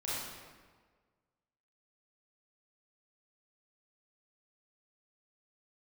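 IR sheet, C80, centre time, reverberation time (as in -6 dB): 0.0 dB, 111 ms, 1.5 s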